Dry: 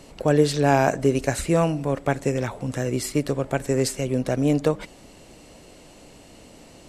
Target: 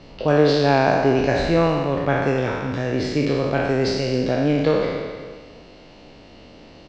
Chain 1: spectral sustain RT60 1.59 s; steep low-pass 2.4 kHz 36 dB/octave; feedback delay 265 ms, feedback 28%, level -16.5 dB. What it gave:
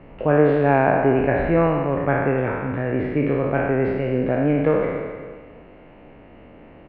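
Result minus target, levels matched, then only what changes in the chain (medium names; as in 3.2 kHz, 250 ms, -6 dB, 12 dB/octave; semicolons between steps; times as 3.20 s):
4 kHz band -17.5 dB
change: steep low-pass 5.1 kHz 36 dB/octave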